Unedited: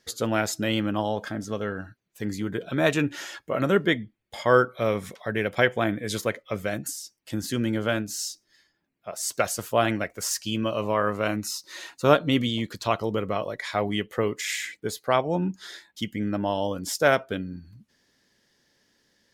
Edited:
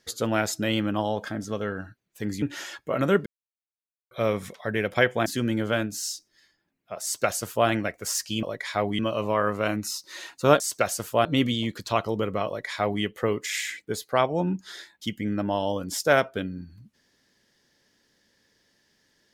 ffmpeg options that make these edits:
ffmpeg -i in.wav -filter_complex "[0:a]asplit=9[link_01][link_02][link_03][link_04][link_05][link_06][link_07][link_08][link_09];[link_01]atrim=end=2.422[link_10];[link_02]atrim=start=3.028:end=3.87,asetpts=PTS-STARTPTS,afade=type=out:start_time=0.838:duration=0.004:curve=hsin[link_11];[link_03]atrim=start=3.87:end=4.72,asetpts=PTS-STARTPTS,volume=0[link_12];[link_04]atrim=start=4.72:end=5.872,asetpts=PTS-STARTPTS,afade=type=in:duration=0.004:curve=hsin[link_13];[link_05]atrim=start=7.418:end=10.592[link_14];[link_06]atrim=start=13.418:end=13.982[link_15];[link_07]atrim=start=10.588:end=12.202[link_16];[link_08]atrim=start=9.188:end=9.842[link_17];[link_09]atrim=start=12.198[link_18];[link_11][link_12][link_13]concat=n=3:v=0:a=1[link_19];[link_10][link_19]acrossfade=duration=0.004:curve1=hsin:curve2=hsin[link_20];[link_20][link_14]acrossfade=duration=0.004:curve1=hsin:curve2=hsin[link_21];[link_21][link_15]acrossfade=duration=0.004:curve1=hsin:curve2=hsin[link_22];[link_22][link_16]acrossfade=duration=0.004:curve1=hsin:curve2=hsin[link_23];[link_23][link_17]acrossfade=duration=0.004:curve1=hsin:curve2=hsin[link_24];[link_24][link_18]acrossfade=duration=0.004:curve1=hsin:curve2=hsin" out.wav

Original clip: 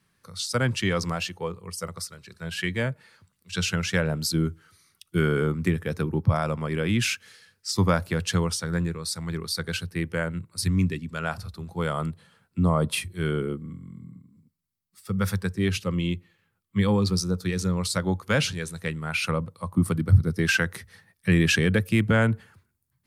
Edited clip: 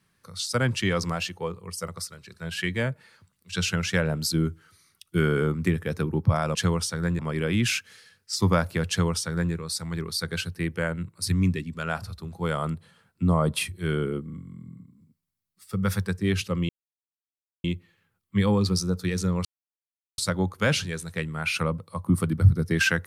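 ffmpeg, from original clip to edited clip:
ffmpeg -i in.wav -filter_complex "[0:a]asplit=5[link_01][link_02][link_03][link_04][link_05];[link_01]atrim=end=6.552[link_06];[link_02]atrim=start=8.248:end=8.892[link_07];[link_03]atrim=start=6.548:end=16.05,asetpts=PTS-STARTPTS,afade=type=out:start_time=9.498:duration=0.004:curve=hsin,apad=pad_dur=0.95[link_08];[link_04]atrim=start=16.05:end=17.86,asetpts=PTS-STARTPTS,afade=type=in:duration=0.004:curve=hsin,afade=type=out:start_time=1.806:duration=0.004:curve=hsin,apad=pad_dur=0.73[link_09];[link_05]atrim=start=17.86,asetpts=PTS-STARTPTS,afade=type=in:duration=0.004:curve=hsin[link_10];[link_06][link_07]acrossfade=duration=0.004:curve1=hsin:curve2=hsin[link_11];[link_08][link_09][link_10]concat=n=3:v=0:a=1[link_12];[link_11][link_12]acrossfade=duration=0.004:curve1=hsin:curve2=hsin" out.wav

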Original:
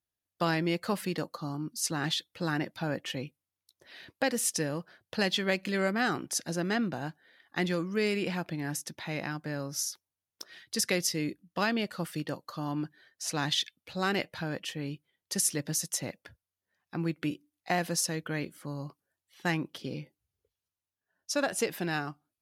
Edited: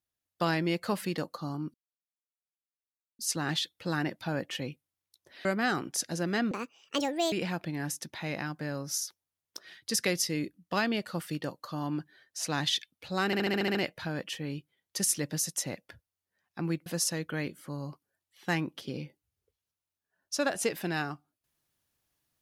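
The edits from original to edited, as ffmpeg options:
ffmpeg -i in.wav -filter_complex "[0:a]asplit=13[link_01][link_02][link_03][link_04][link_05][link_06][link_07][link_08][link_09][link_10][link_11][link_12][link_13];[link_01]atrim=end=1.74,asetpts=PTS-STARTPTS,afade=type=out:start_time=1.736:duration=0.004:curve=hsin,apad=pad_dur=1.45[link_14];[link_02]atrim=start=1.74:end=4.002,asetpts=PTS-STARTPTS,afade=type=in:duration=0.004:curve=hsin[link_15];[link_03]atrim=start=5.818:end=6.884[link_16];[link_04]atrim=start=6.88:end=8.17,asetpts=PTS-STARTPTS,asetrate=70119,aresample=44100,atrim=end_sample=35779,asetpts=PTS-STARTPTS[link_17];[link_05]atrim=start=8.166:end=14.182[link_18];[link_06]atrim=start=14.108:end=14.182[link_19];[link_07]atrim=start=14.108:end=14.182[link_20];[link_08]atrim=start=14.108:end=14.182[link_21];[link_09]atrim=start=14.108:end=14.182[link_22];[link_10]atrim=start=14.108:end=14.182[link_23];[link_11]atrim=start=14.108:end=14.182[link_24];[link_12]atrim=start=14.108:end=17.222[link_25];[link_13]atrim=start=17.828[link_26];[link_14][link_15]concat=n=2:v=0:a=1[link_27];[link_27][link_16]acrossfade=duration=0.004:curve1=hsin:curve2=hsin[link_28];[link_28][link_17]acrossfade=duration=0.004:curve1=hsin:curve2=hsin[link_29];[link_29][link_18]acrossfade=duration=0.004:curve1=hsin:curve2=hsin[link_30];[link_30][link_19]acrossfade=duration=0.004:curve1=hsin:curve2=hsin[link_31];[link_31][link_20]acrossfade=duration=0.004:curve1=hsin:curve2=hsin[link_32];[link_32][link_21]acrossfade=duration=0.004:curve1=hsin:curve2=hsin[link_33];[link_33][link_22]acrossfade=duration=0.004:curve1=hsin:curve2=hsin[link_34];[link_34][link_23]acrossfade=duration=0.004:curve1=hsin:curve2=hsin[link_35];[link_35][link_24]acrossfade=duration=0.004:curve1=hsin:curve2=hsin[link_36];[link_36][link_25]acrossfade=duration=0.004:curve1=hsin:curve2=hsin[link_37];[link_37][link_26]acrossfade=duration=0.004:curve1=hsin:curve2=hsin" out.wav

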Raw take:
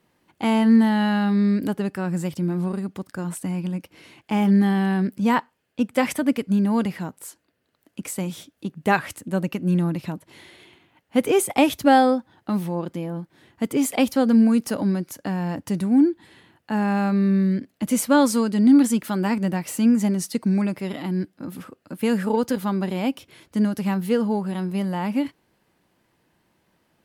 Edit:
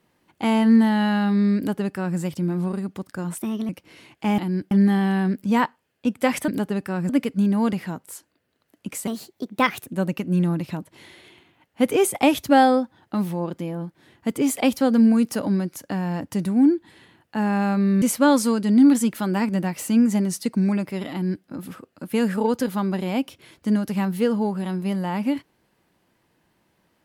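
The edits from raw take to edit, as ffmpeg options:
ffmpeg -i in.wav -filter_complex "[0:a]asplit=10[link_01][link_02][link_03][link_04][link_05][link_06][link_07][link_08][link_09][link_10];[link_01]atrim=end=3.384[link_11];[link_02]atrim=start=3.38:end=3.76,asetpts=PTS-STARTPTS,asetrate=53802,aresample=44100,atrim=end_sample=13736,asetpts=PTS-STARTPTS[link_12];[link_03]atrim=start=3.756:end=4.452[link_13];[link_04]atrim=start=21.008:end=21.342[link_14];[link_05]atrim=start=4.448:end=6.222[link_15];[link_06]atrim=start=1.568:end=2.182[link_16];[link_07]atrim=start=6.218:end=8.204[link_17];[link_08]atrim=start=8.2:end=9.22,asetpts=PTS-STARTPTS,asetrate=56448,aresample=44100,atrim=end_sample=35142,asetpts=PTS-STARTPTS[link_18];[link_09]atrim=start=9.216:end=17.372[link_19];[link_10]atrim=start=17.908[link_20];[link_11][link_12]acrossfade=duration=0.004:curve1=hsin:curve2=hsin[link_21];[link_21][link_13]acrossfade=duration=0.004:curve1=hsin:curve2=hsin[link_22];[link_22][link_14]acrossfade=duration=0.004:curve1=hsin:curve2=hsin[link_23];[link_23][link_15]acrossfade=duration=0.004:curve1=hsin:curve2=hsin[link_24];[link_24][link_16]acrossfade=duration=0.004:curve1=hsin:curve2=hsin[link_25];[link_25][link_17]acrossfade=duration=0.004:curve1=hsin:curve2=hsin[link_26];[link_26][link_18]acrossfade=duration=0.004:curve1=hsin:curve2=hsin[link_27];[link_27][link_19]acrossfade=duration=0.004:curve1=hsin:curve2=hsin[link_28];[link_28][link_20]acrossfade=duration=0.004:curve1=hsin:curve2=hsin" out.wav

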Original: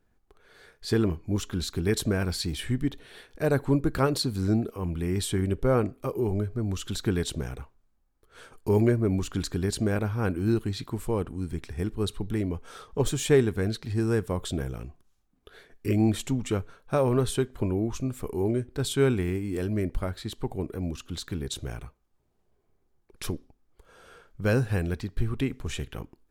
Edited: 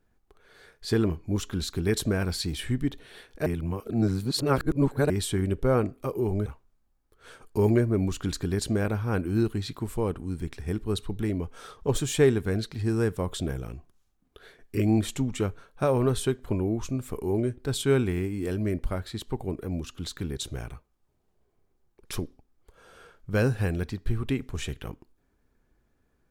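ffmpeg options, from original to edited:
ffmpeg -i in.wav -filter_complex "[0:a]asplit=4[link_01][link_02][link_03][link_04];[link_01]atrim=end=3.462[link_05];[link_02]atrim=start=3.458:end=5.102,asetpts=PTS-STARTPTS,areverse[link_06];[link_03]atrim=start=5.098:end=6.462[link_07];[link_04]atrim=start=7.568[link_08];[link_05][link_06]acrossfade=duration=0.004:curve1=hsin:curve2=hsin[link_09];[link_09][link_07]acrossfade=duration=0.004:curve1=hsin:curve2=hsin[link_10];[link_10][link_08]acrossfade=duration=0.004:curve1=hsin:curve2=hsin" out.wav

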